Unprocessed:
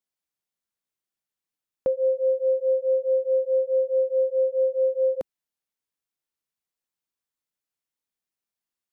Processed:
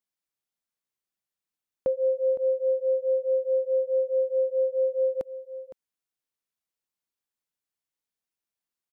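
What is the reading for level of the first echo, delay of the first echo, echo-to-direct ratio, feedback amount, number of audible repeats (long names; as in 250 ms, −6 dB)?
−14.0 dB, 512 ms, −14.0 dB, repeats not evenly spaced, 1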